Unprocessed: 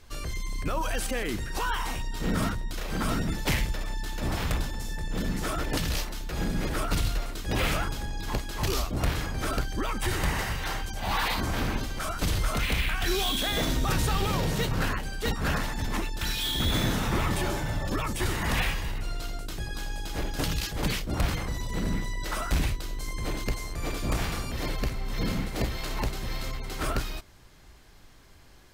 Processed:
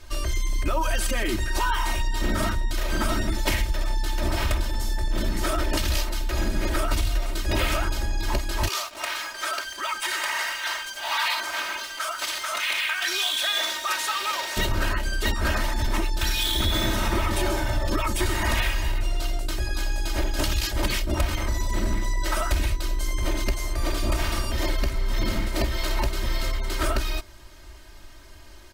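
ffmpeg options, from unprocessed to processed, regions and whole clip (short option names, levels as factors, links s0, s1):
-filter_complex "[0:a]asettb=1/sr,asplit=3[s0][s1][s2];[s0]atrim=end=8.684[s3];[s1]atrim=start=8.68:end=14.57,asetpts=PTS-STARTPTS,afade=t=in:d=0.004:c=qsin,afade=t=out:st=5.886:d=0.004:c=qsin,highpass=1000,acrusher=bits=6:mix=0:aa=0.5,highshelf=f=10000:g=-8[s4];[s2]atrim=start=14.566[s5];[s3][s4]acrossfade=d=0.004:c1=hsin:c2=qsin[s6];[s6][s5]acrossfade=d=0.004:c1=qsin:c2=hsin,equalizer=f=260:w=7.8:g=-11.5,aecho=1:1:3.2:0.95,acompressor=threshold=0.0708:ratio=6,volume=1.58"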